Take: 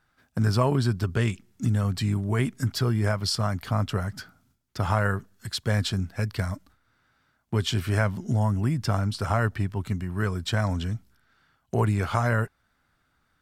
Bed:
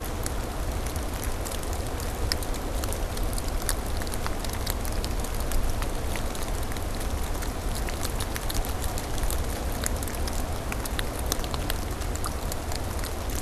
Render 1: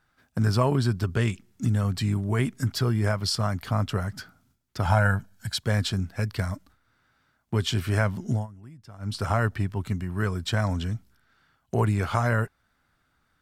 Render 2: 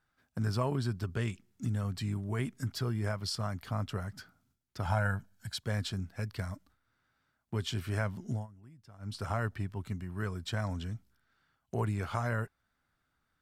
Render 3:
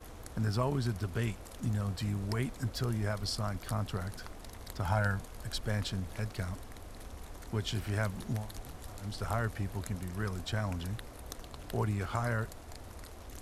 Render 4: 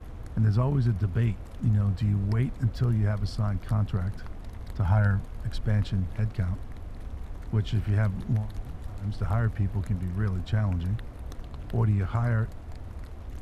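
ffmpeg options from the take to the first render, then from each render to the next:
ffmpeg -i in.wav -filter_complex "[0:a]asettb=1/sr,asplit=3[link_01][link_02][link_03];[link_01]atrim=end=4.854[link_04];[link_02]atrim=start=4.85:end=5.59,asetpts=PTS-STARTPTS,afade=type=in:duration=0.004:curve=qsin,afade=type=out:start_time=0.736:duration=0.004:curve=qsin,aecho=1:1:1.3:0.7,atrim=end_sample=32634[link_05];[link_03]atrim=start=5.586[link_06];[link_04][link_05]acrossfade=duration=0.004:curve1=hsin:curve2=qsin[link_07];[link_07][link_06]acrossfade=duration=0.004:curve1=qsin:curve2=hsin,asplit=3[link_08][link_09][link_10];[link_08]atrim=end=8.47,asetpts=PTS-STARTPTS,afade=type=out:start_time=8.33:duration=0.14:silence=0.0891251[link_11];[link_09]atrim=start=8.47:end=8.99,asetpts=PTS-STARTPTS,volume=-21dB[link_12];[link_10]atrim=start=8.99,asetpts=PTS-STARTPTS,afade=type=in:duration=0.14:silence=0.0891251[link_13];[link_11][link_12][link_13]concat=n=3:v=0:a=1" out.wav
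ffmpeg -i in.wav -af "volume=-9dB" out.wav
ffmpeg -i in.wav -i bed.wav -filter_complex "[1:a]volume=-17dB[link_01];[0:a][link_01]amix=inputs=2:normalize=0" out.wav
ffmpeg -i in.wav -af "bass=frequency=250:gain=10,treble=frequency=4000:gain=-11" out.wav

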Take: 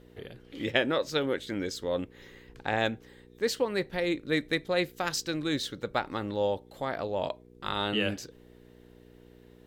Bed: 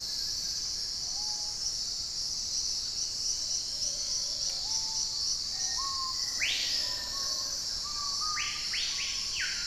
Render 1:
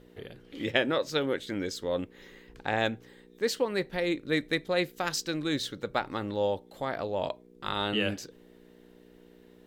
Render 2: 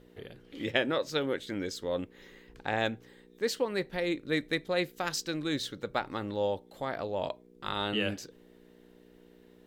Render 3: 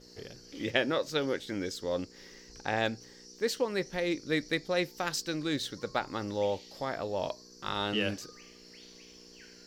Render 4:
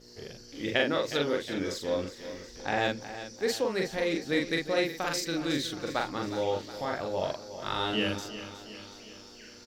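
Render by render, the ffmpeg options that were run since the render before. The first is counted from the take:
ffmpeg -i in.wav -af "bandreject=frequency=60:width_type=h:width=4,bandreject=frequency=120:width_type=h:width=4" out.wav
ffmpeg -i in.wav -af "volume=-2dB" out.wav
ffmpeg -i in.wav -i bed.wav -filter_complex "[1:a]volume=-22dB[link_01];[0:a][link_01]amix=inputs=2:normalize=0" out.wav
ffmpeg -i in.wav -filter_complex "[0:a]asplit=2[link_01][link_02];[link_02]adelay=42,volume=-2.5dB[link_03];[link_01][link_03]amix=inputs=2:normalize=0,aecho=1:1:363|726|1089|1452|1815|2178:0.237|0.133|0.0744|0.0416|0.0233|0.0131" out.wav

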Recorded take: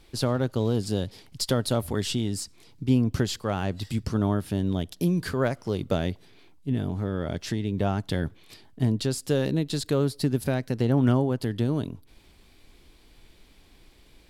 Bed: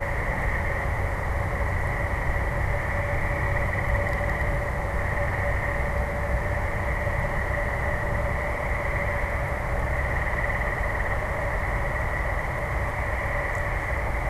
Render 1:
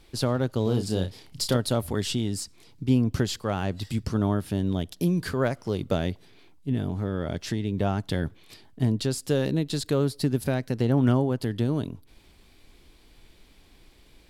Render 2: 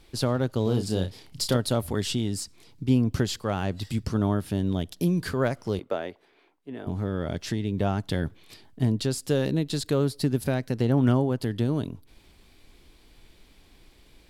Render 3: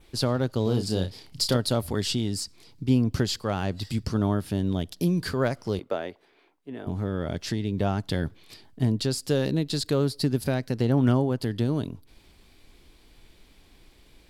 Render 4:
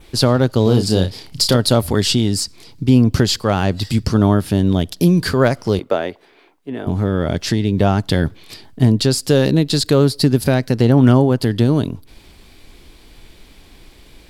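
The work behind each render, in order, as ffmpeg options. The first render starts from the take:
ffmpeg -i in.wav -filter_complex "[0:a]asettb=1/sr,asplit=3[link_01][link_02][link_03];[link_01]atrim=end=0.634[link_04];[link_02]atrim=start=0.63:end=1.57,asetpts=PTS-STARTPTS,afade=type=in:duration=0.004:curve=qsin,afade=type=out:start_time=0.936:duration=0.004:curve=qsin,asplit=2[link_05][link_06];[link_06]adelay=32,volume=-7dB[link_07];[link_05][link_07]amix=inputs=2:normalize=0,atrim=end_sample=41454[link_08];[link_03]atrim=start=1.566[link_09];[link_04][link_08]acrossfade=duration=0.004:curve1=hsin:curve2=qsin[link_10];[link_10][link_09]acrossfade=duration=0.004:curve1=qsin:curve2=hsin" out.wav
ffmpeg -i in.wav -filter_complex "[0:a]asettb=1/sr,asplit=3[link_01][link_02][link_03];[link_01]atrim=end=5.794[link_04];[link_02]atrim=start=5.79:end=6.87,asetpts=PTS-STARTPTS,afade=type=in:duration=0.004:curve=qsin,afade=type=out:start_time=1.076:duration=0.004:curve=qsin,acrossover=split=330 2500:gain=0.0708 1 0.224[link_05][link_06][link_07];[link_05][link_06][link_07]amix=inputs=3:normalize=0[link_08];[link_03]atrim=start=6.866[link_09];[link_04][link_08]acrossfade=duration=0.004:curve1=hsin:curve2=qsin[link_10];[link_10][link_09]acrossfade=duration=0.004:curve1=qsin:curve2=hsin" out.wav
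ffmpeg -i in.wav -af "adynamicequalizer=threshold=0.00251:dfrequency=4700:dqfactor=3.5:tfrequency=4700:tqfactor=3.5:attack=5:release=100:ratio=0.375:range=3:mode=boostabove:tftype=bell" out.wav
ffmpeg -i in.wav -af "volume=11dB,alimiter=limit=-3dB:level=0:latency=1" out.wav

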